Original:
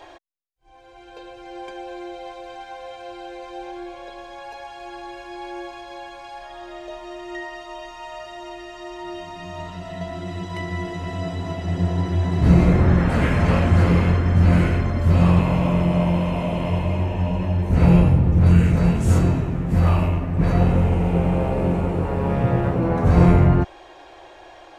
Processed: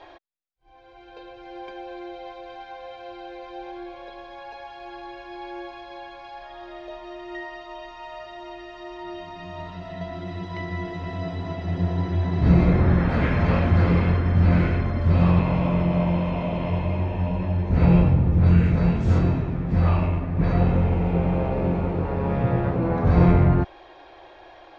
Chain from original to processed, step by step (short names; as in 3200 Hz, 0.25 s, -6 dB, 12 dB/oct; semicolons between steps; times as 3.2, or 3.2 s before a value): LPF 4800 Hz 24 dB/oct; notch 2900 Hz, Q 14; gain -2.5 dB